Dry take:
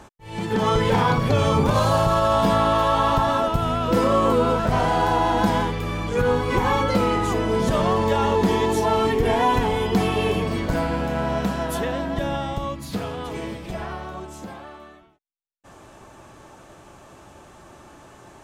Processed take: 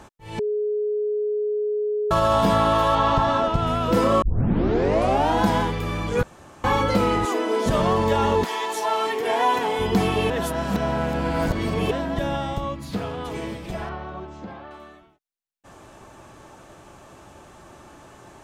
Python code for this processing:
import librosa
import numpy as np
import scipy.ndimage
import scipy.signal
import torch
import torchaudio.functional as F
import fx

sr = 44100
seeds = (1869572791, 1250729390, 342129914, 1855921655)

y = fx.lowpass(x, sr, hz=6100.0, slope=12, at=(2.95, 3.67))
y = fx.steep_highpass(y, sr, hz=250.0, slope=48, at=(7.25, 7.66))
y = fx.highpass(y, sr, hz=fx.line((8.43, 940.0), (9.78, 310.0)), slope=12, at=(8.43, 9.78), fade=0.02)
y = fx.high_shelf(y, sr, hz=5800.0, db=-7.5, at=(12.6, 13.25))
y = fx.air_absorb(y, sr, metres=200.0, at=(13.89, 14.71))
y = fx.edit(y, sr, fx.bleep(start_s=0.39, length_s=1.72, hz=420.0, db=-21.0),
    fx.tape_start(start_s=4.22, length_s=1.13),
    fx.room_tone_fill(start_s=6.23, length_s=0.41),
    fx.reverse_span(start_s=10.3, length_s=1.61), tone=tone)